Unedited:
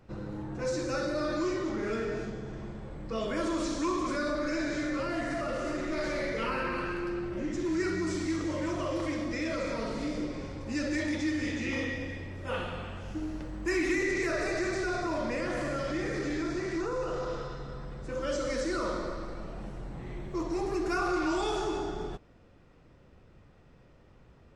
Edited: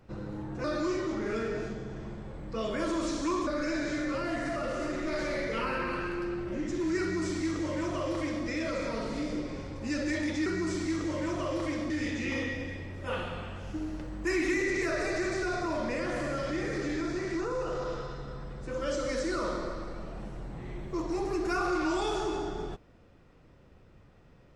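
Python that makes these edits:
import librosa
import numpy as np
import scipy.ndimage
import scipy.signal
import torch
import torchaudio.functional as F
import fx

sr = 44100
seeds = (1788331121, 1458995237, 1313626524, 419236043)

y = fx.edit(x, sr, fx.cut(start_s=0.64, length_s=0.57),
    fx.cut(start_s=4.04, length_s=0.28),
    fx.duplicate(start_s=7.86, length_s=1.44, to_s=11.31), tone=tone)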